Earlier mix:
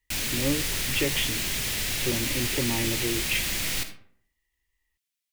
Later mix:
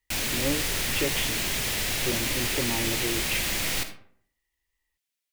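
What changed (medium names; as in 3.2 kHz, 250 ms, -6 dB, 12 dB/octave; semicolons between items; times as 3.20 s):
speech -4.5 dB; master: add peaking EQ 700 Hz +5.5 dB 2.2 oct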